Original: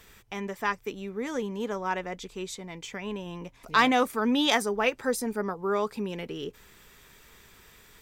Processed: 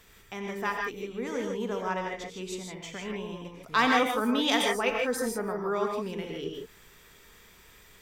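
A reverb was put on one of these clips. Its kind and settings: non-linear reverb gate 0.18 s rising, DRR 1 dB; gain -3 dB

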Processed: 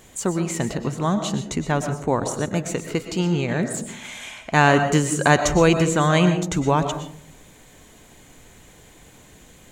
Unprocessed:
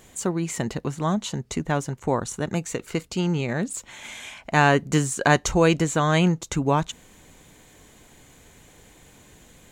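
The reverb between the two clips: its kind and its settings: digital reverb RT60 0.63 s, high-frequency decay 0.3×, pre-delay 80 ms, DRR 7.5 dB; gain +2 dB

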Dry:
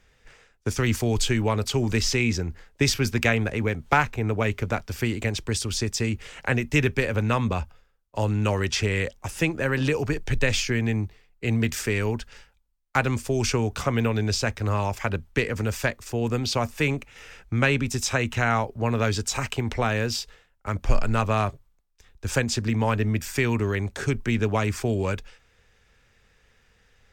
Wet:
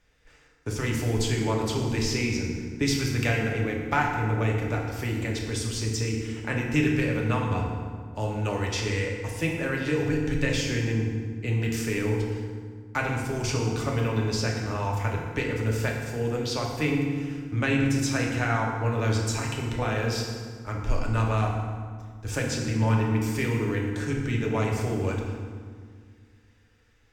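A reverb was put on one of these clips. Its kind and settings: FDN reverb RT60 1.8 s, low-frequency decay 1.45×, high-frequency decay 0.65×, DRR -1.5 dB; gain -7 dB

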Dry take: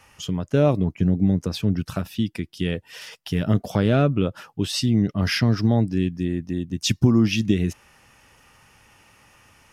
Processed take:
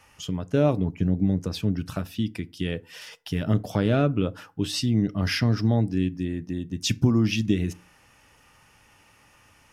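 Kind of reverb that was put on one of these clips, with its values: FDN reverb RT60 0.36 s, low-frequency decay 1.2×, high-frequency decay 0.6×, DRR 15.5 dB; gain -3 dB

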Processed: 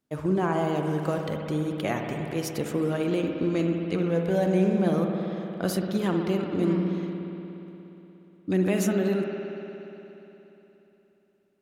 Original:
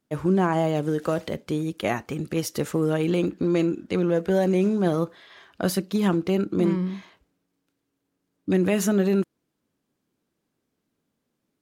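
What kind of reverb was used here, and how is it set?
spring tank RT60 3.4 s, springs 59 ms, chirp 70 ms, DRR 2.5 dB; gain -4 dB

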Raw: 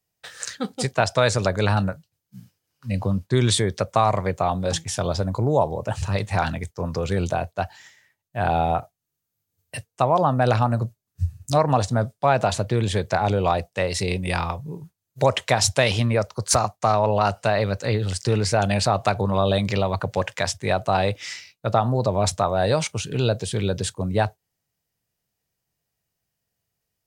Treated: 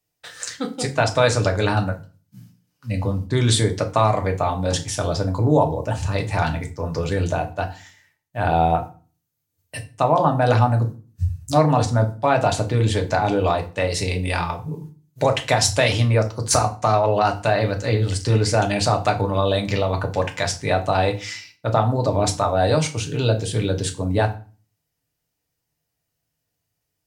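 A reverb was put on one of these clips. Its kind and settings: FDN reverb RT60 0.36 s, low-frequency decay 1.45×, high-frequency decay 0.85×, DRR 3.5 dB

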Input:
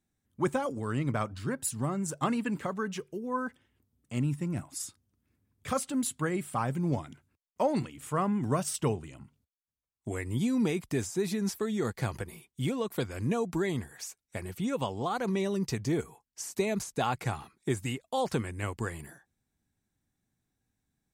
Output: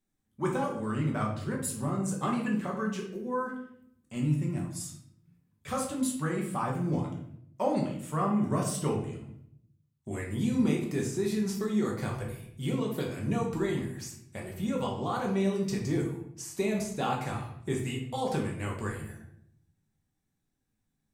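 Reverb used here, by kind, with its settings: shoebox room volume 140 m³, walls mixed, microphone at 1.1 m; gain -4.5 dB

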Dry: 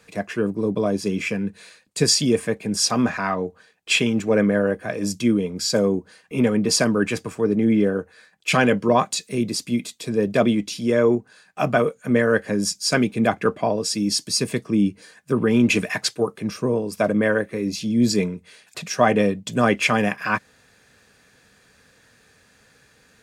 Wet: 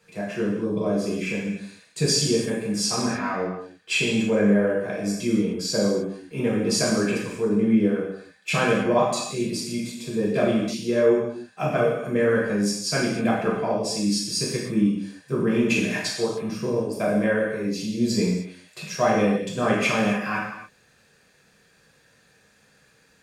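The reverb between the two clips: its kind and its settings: non-linear reverb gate 0.33 s falling, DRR -5 dB; gain -9 dB

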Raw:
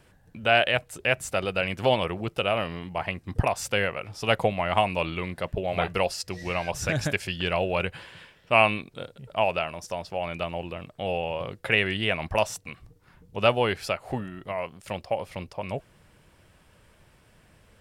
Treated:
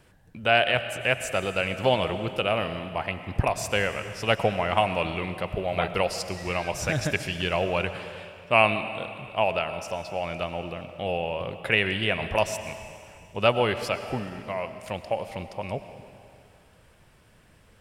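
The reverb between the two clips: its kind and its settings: digital reverb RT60 2.4 s, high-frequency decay 1×, pre-delay 65 ms, DRR 10 dB

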